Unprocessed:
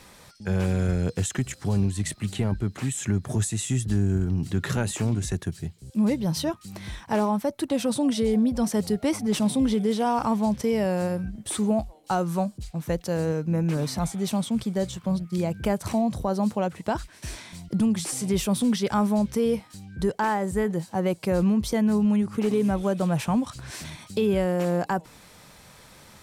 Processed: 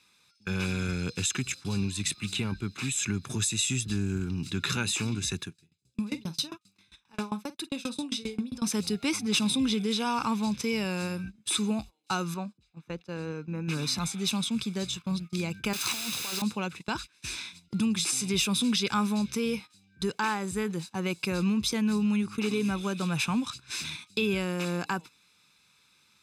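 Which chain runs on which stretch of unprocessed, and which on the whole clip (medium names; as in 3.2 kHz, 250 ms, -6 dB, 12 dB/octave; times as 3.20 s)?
5.45–8.62 s: peaking EQ 79 Hz -8.5 dB 0.26 oct + doubling 48 ms -9 dB + sawtooth tremolo in dB decaying 7.5 Hz, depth 22 dB
12.34–13.68 s: low-pass 1.2 kHz 6 dB/octave + bass shelf 210 Hz -7.5 dB
15.73–16.42 s: high-pass 540 Hz 6 dB/octave + compressor with a negative ratio -32 dBFS, ratio -0.5 + word length cut 6-bit, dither triangular
whole clip: frequency weighting D; gate -35 dBFS, range -16 dB; comb 0.8 ms, depth 66%; trim -5.5 dB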